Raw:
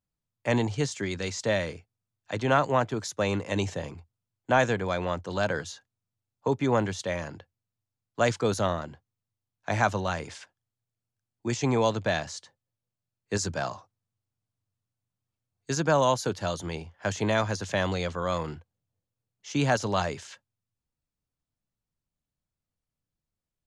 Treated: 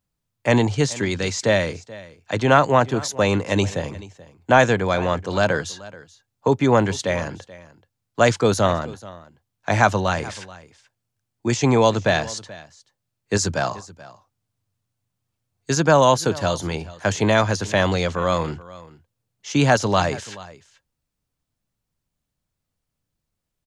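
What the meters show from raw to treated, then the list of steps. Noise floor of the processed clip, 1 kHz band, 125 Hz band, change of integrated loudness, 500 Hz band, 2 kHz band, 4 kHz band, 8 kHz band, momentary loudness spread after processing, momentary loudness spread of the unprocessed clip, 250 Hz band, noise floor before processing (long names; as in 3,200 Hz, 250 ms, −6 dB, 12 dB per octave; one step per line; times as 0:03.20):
−80 dBFS, +8.0 dB, +8.0 dB, +8.0 dB, +8.0 dB, +8.0 dB, +8.0 dB, +8.0 dB, 17 LU, 16 LU, +8.0 dB, below −85 dBFS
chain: single-tap delay 431 ms −19.5 dB
level +8 dB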